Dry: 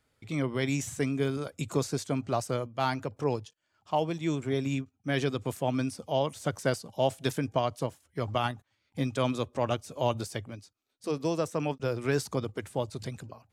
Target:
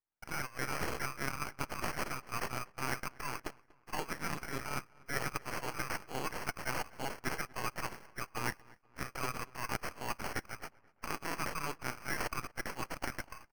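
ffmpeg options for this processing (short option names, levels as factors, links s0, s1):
-filter_complex "[0:a]agate=range=0.0224:threshold=0.00178:ratio=3:detection=peak,highpass=f=1300:w=0.5412,highpass=f=1300:w=1.3066,aecho=1:1:1.8:0.38,areverse,acompressor=threshold=0.00631:ratio=6,areverse,acrusher=samples=12:mix=1:aa=0.000001,aeval=exprs='max(val(0),0)':c=same,asplit=2[s0][s1];[s1]adelay=240,lowpass=f=2900:p=1,volume=0.0708,asplit=2[s2][s3];[s3]adelay=240,lowpass=f=2900:p=1,volume=0.46,asplit=2[s4][s5];[s5]adelay=240,lowpass=f=2900:p=1,volume=0.46[s6];[s2][s4][s6]amix=inputs=3:normalize=0[s7];[s0][s7]amix=inputs=2:normalize=0,volume=5.01"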